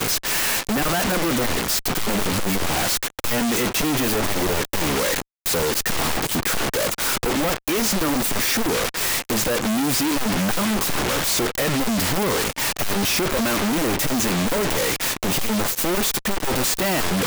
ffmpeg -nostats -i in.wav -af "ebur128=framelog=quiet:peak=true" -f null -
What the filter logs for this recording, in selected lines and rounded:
Integrated loudness:
  I:         -20.9 LUFS
  Threshold: -30.9 LUFS
Loudness range:
  LRA:         0.8 LU
  Threshold: -41.0 LUFS
  LRA low:   -21.4 LUFS
  LRA high:  -20.6 LUFS
True peak:
  Peak:      -13.1 dBFS